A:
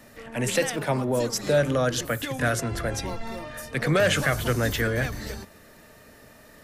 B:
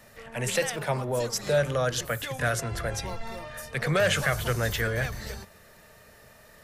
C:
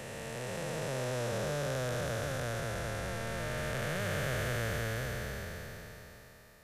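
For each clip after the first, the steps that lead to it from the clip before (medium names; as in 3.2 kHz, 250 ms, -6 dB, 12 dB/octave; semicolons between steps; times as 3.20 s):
peaking EQ 280 Hz -12.5 dB 0.54 oct; trim -1.5 dB
spectral blur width 1370 ms; trim -2 dB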